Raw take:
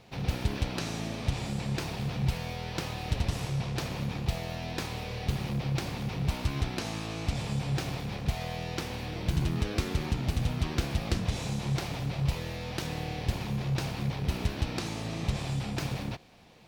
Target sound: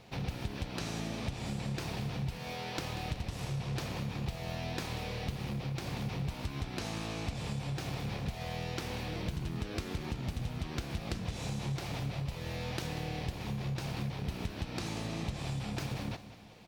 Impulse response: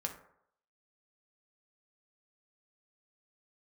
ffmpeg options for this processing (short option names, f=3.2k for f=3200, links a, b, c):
-filter_complex "[0:a]asettb=1/sr,asplit=3[a][b][c];[a]atrim=end=2.374[d];[b]atrim=start=2.37:end=2.79,asetpts=PTS-STARTPTS,afade=t=in:d=0.004:c=qsin,afade=t=out:st=0.416:d=0.004:c=qsin,highpass=180[e];[c]atrim=start=2.786[f];[d][e]acrossfade=d=0.004:c1=hsin:c2=qsin[g];[g][f]acrossfade=d=0.004:c1=qsin:c2=hsin,acompressor=threshold=-33dB:ratio=6,aecho=1:1:187|374|561|748:0.2|0.0858|0.0369|0.0159"